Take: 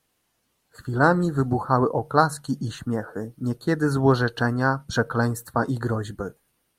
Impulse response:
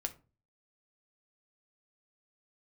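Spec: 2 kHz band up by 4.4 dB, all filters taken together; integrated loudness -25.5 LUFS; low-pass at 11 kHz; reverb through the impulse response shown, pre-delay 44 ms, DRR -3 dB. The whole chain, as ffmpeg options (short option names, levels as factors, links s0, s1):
-filter_complex "[0:a]lowpass=11000,equalizer=f=2000:t=o:g=7,asplit=2[s0][s1];[1:a]atrim=start_sample=2205,adelay=44[s2];[s1][s2]afir=irnorm=-1:irlink=0,volume=1.41[s3];[s0][s3]amix=inputs=2:normalize=0,volume=0.398"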